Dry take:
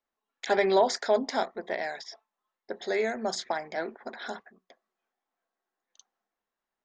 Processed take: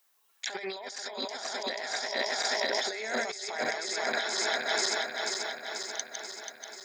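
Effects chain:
feedback delay that plays each chunk backwards 243 ms, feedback 78%, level −5.5 dB
spectral tilt +4.5 dB per octave
compressor whose output falls as the input rises −37 dBFS, ratio −1
level +3 dB

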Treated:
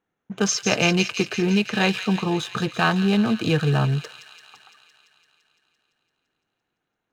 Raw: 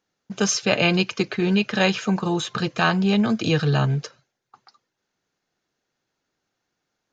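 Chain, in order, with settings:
adaptive Wiener filter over 9 samples
notch filter 570 Hz, Q 12
on a send: delay with a high-pass on its return 170 ms, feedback 72%, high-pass 2,500 Hz, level −7 dB

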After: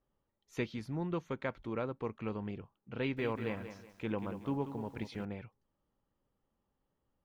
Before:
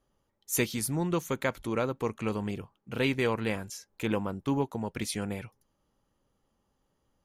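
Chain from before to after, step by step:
high-frequency loss of the air 250 metres
0:02.98–0:05.25: feedback echo at a low word length 187 ms, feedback 35%, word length 9 bits, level −10 dB
level −6.5 dB

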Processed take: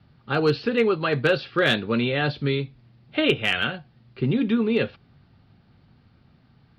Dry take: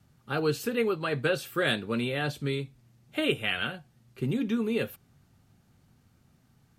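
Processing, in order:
Butterworth low-pass 4,900 Hz 72 dB per octave
asymmetric clip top −18 dBFS, bottom −14.5 dBFS
level +6.5 dB

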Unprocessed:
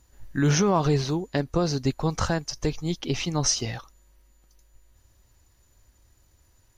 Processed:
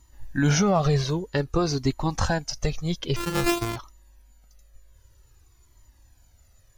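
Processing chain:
0:03.16–0:03.76: samples sorted by size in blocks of 128 samples
flanger whose copies keep moving one way falling 0.52 Hz
level +5.5 dB

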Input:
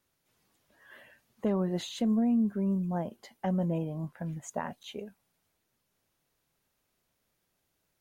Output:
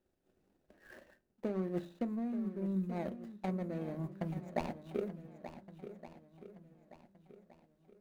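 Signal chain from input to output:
running median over 41 samples
parametric band 120 Hz −11 dB 0.56 octaves
reversed playback
downward compressor 6 to 1, threshold −40 dBFS, peak gain reduction 14 dB
reversed playback
mains-hum notches 50/100/150/200 Hz
transient designer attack +6 dB, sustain −6 dB
feedback echo with a long and a short gap by turns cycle 1,468 ms, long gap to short 1.5 to 1, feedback 32%, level −12 dB
on a send at −12 dB: convolution reverb RT60 0.35 s, pre-delay 3 ms
on the sum: level +4 dB

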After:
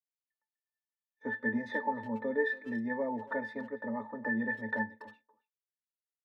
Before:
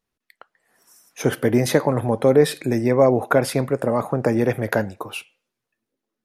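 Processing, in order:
low-pass filter 6,800 Hz
resonances in every octave A, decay 0.17 s
downward expander −40 dBFS
high-pass filter 280 Hz 12 dB per octave
parametric band 1,600 Hz +14.5 dB 0.51 octaves
comb filter 3.3 ms, depth 90%
far-end echo of a speakerphone 280 ms, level −18 dB
level −2.5 dB

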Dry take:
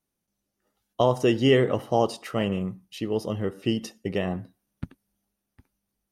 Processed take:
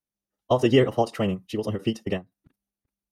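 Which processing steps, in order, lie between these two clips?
noise gate −51 dBFS, range −12 dB
phase-vocoder stretch with locked phases 0.51×
every ending faded ahead of time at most 330 dB per second
level +2.5 dB

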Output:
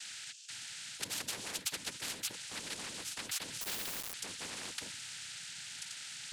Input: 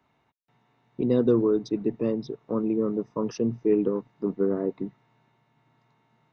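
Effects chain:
phase distortion by the signal itself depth 0.48 ms
inverse Chebyshev high-pass filter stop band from 1,400 Hz, stop band 50 dB
parametric band 5,200 Hz +8.5 dB 0.28 octaves
in parallel at −1.5 dB: compressor whose output falls as the input rises −60 dBFS
on the sum: high-frequency loss of the air 120 metres
cochlear-implant simulation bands 8
0:03.61–0:04.14: log-companded quantiser 6 bits
every bin compressed towards the loudest bin 4 to 1
level +11.5 dB

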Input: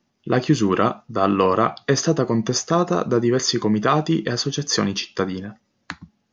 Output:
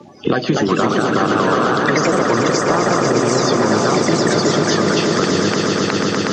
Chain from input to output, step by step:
spectral magnitudes quantised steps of 30 dB
high-pass filter 140 Hz 12 dB per octave
downward compressor, threshold −25 dBFS, peak gain reduction 12 dB
delay with pitch and tempo change per echo 278 ms, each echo +2 semitones, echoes 2
high-frequency loss of the air 77 metres
echo that builds up and dies away 122 ms, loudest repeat 5, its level −9.5 dB
boost into a limiter +13.5 dB
multiband upward and downward compressor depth 70%
level −3.5 dB

